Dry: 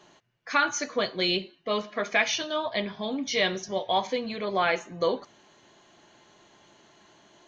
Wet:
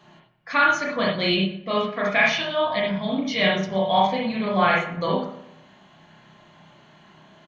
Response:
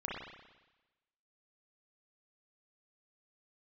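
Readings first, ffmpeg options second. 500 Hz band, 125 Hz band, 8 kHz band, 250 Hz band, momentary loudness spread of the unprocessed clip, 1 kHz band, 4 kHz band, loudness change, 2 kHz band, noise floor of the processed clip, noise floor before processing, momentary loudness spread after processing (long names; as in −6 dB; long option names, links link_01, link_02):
+4.5 dB, +12.0 dB, can't be measured, +8.5 dB, 6 LU, +7.0 dB, +3.0 dB, +5.5 dB, +6.0 dB, −54 dBFS, −61 dBFS, 6 LU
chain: -filter_complex "[0:a]equalizer=frequency=160:width_type=o:width=0.67:gain=9,equalizer=frequency=400:width_type=o:width=0.67:gain=-8,equalizer=frequency=6300:width_type=o:width=0.67:gain=-9,asplit=2[link_01][link_02];[link_02]adelay=117,lowpass=frequency=1800:poles=1,volume=-12dB,asplit=2[link_03][link_04];[link_04]adelay=117,lowpass=frequency=1800:poles=1,volume=0.39,asplit=2[link_05][link_06];[link_06]adelay=117,lowpass=frequency=1800:poles=1,volume=0.39,asplit=2[link_07][link_08];[link_08]adelay=117,lowpass=frequency=1800:poles=1,volume=0.39[link_09];[link_01][link_03][link_05][link_07][link_09]amix=inputs=5:normalize=0[link_10];[1:a]atrim=start_sample=2205,atrim=end_sample=4410[link_11];[link_10][link_11]afir=irnorm=-1:irlink=0,volume=5dB"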